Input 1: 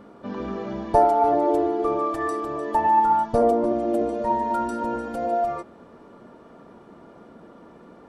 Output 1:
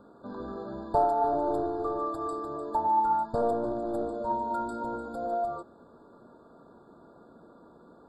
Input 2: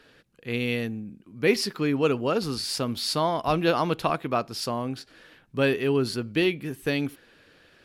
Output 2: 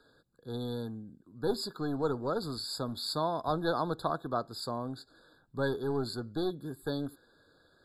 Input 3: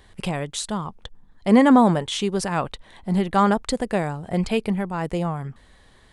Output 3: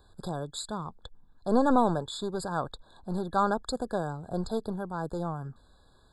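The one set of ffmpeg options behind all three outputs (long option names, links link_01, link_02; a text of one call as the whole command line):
ffmpeg -i in.wav -filter_complex "[0:a]equalizer=frequency=200:width_type=o:width=0.21:gain=-4.5,acrossover=split=520|5600[link_01][link_02][link_03];[link_01]aeval=exprs='clip(val(0),-1,0.0316)':channel_layout=same[link_04];[link_04][link_02][link_03]amix=inputs=3:normalize=0,afftfilt=real='re*eq(mod(floor(b*sr/1024/1700),2),0)':imag='im*eq(mod(floor(b*sr/1024/1700),2),0)':win_size=1024:overlap=0.75,volume=-6.5dB" out.wav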